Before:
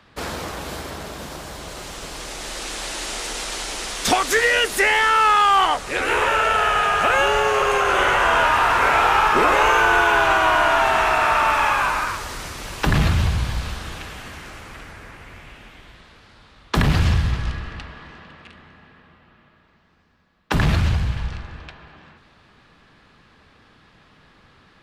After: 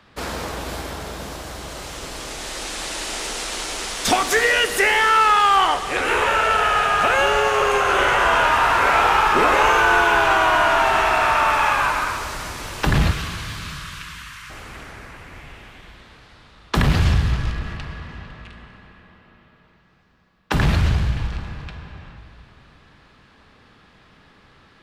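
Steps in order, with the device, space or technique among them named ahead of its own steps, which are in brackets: 13.11–14.5 steep high-pass 1000 Hz 72 dB/oct; saturated reverb return (on a send at -5.5 dB: reverb RT60 2.3 s, pre-delay 14 ms + soft clip -19.5 dBFS, distortion -9 dB)

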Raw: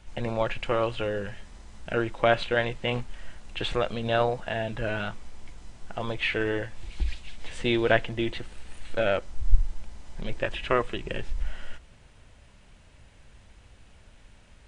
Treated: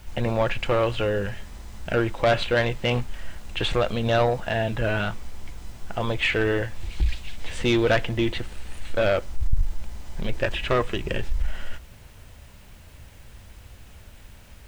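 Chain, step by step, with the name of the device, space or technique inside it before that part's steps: open-reel tape (soft clip -18.5 dBFS, distortion -9 dB; bell 79 Hz +4.5 dB 1.12 oct; white noise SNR 36 dB); gain +5.5 dB

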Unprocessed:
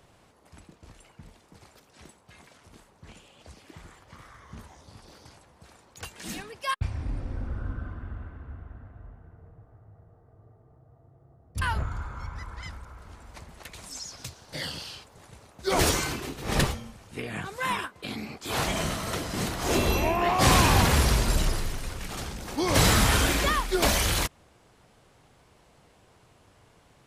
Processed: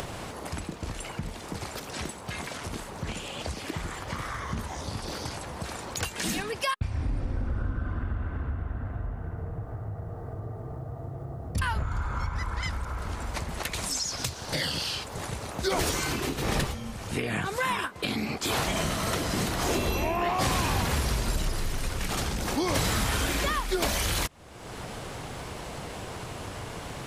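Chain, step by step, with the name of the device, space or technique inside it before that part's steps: upward and downward compression (upward compressor, threshold -27 dBFS; compressor 5:1, threshold -29 dBFS, peak gain reduction 12.5 dB); gain +4.5 dB

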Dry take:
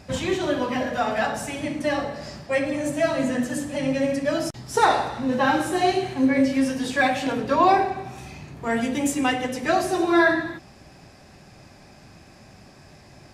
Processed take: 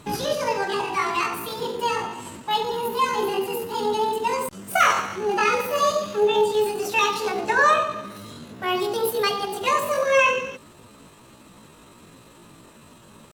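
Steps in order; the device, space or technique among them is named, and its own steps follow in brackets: chipmunk voice (pitch shift +8 st)

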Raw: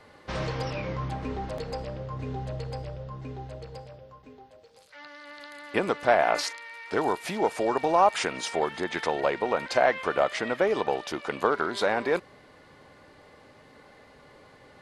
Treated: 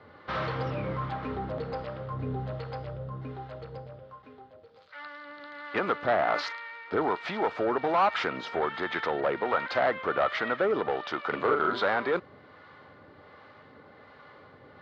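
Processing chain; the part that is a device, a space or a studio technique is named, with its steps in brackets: guitar amplifier with harmonic tremolo (harmonic tremolo 1.3 Hz, depth 50%, crossover 620 Hz; soft clip -22.5 dBFS, distortion -11 dB; speaker cabinet 89–3900 Hz, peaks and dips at 91 Hz +6 dB, 1300 Hz +8 dB, 2600 Hz -4 dB); 11.29–11.81 doubler 40 ms -3.5 dB; gain +2.5 dB

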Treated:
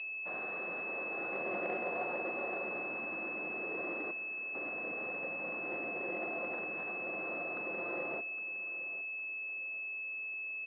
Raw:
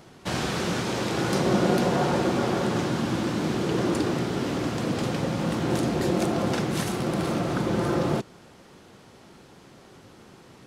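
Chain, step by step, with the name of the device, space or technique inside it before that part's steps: 4.11–4.55 pre-emphasis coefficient 0.8; toy sound module (decimation joined by straight lines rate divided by 6×; pulse-width modulation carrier 2600 Hz; speaker cabinet 790–3600 Hz, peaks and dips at 910 Hz -10 dB, 1400 Hz -6 dB, 2400 Hz -4 dB); feedback echo 0.812 s, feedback 31%, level -15.5 dB; gain -3.5 dB

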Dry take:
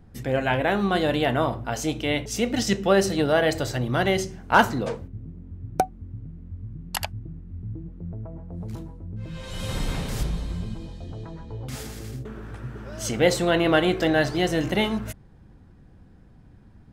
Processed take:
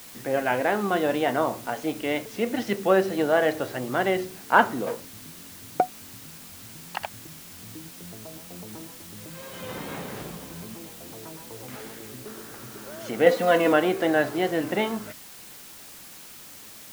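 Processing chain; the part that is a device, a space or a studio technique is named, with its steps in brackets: wax cylinder (BPF 250–2300 Hz; wow and flutter; white noise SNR 17 dB); 13.26–13.73 comb 4.1 ms, depth 88%

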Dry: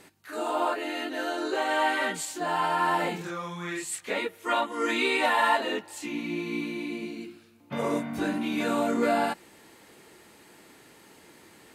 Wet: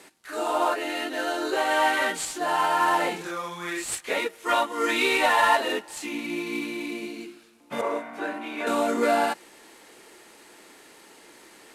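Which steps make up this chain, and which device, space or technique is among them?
early wireless headset (HPF 290 Hz 12 dB/oct; CVSD 64 kbps); 7.81–8.67 three-band isolator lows -14 dB, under 370 Hz, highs -13 dB, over 2600 Hz; gain +3.5 dB

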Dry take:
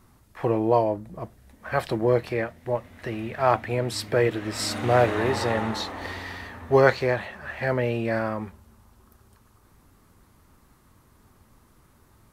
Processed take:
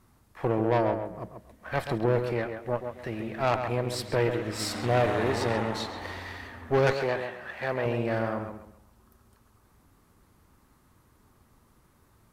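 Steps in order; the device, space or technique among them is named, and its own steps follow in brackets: rockabilly slapback (tube stage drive 18 dB, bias 0.75; tape echo 0.135 s, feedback 32%, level -5.5 dB, low-pass 2400 Hz); 6.93–7.86 low shelf 160 Hz -10.5 dB

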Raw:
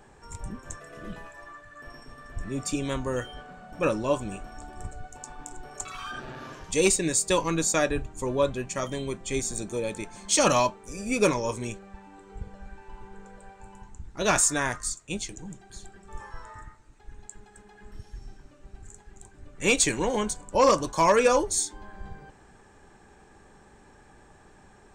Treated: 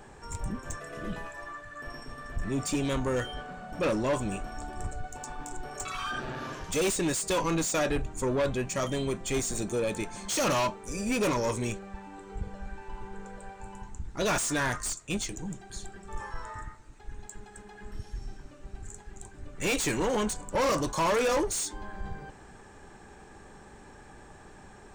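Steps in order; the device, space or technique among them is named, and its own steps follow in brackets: saturation between pre-emphasis and de-emphasis (high shelf 4500 Hz +8.5 dB; soft clip -27 dBFS, distortion -4 dB; high shelf 4500 Hz -8.5 dB); gain +4 dB

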